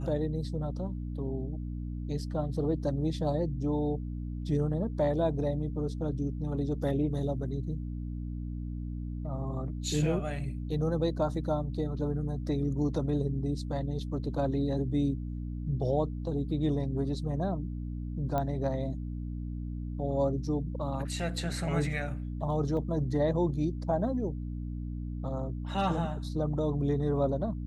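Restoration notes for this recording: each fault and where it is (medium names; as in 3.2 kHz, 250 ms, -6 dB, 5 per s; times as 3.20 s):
hum 60 Hz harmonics 5 -36 dBFS
18.38 s: pop -19 dBFS
22.77 s: dropout 2.2 ms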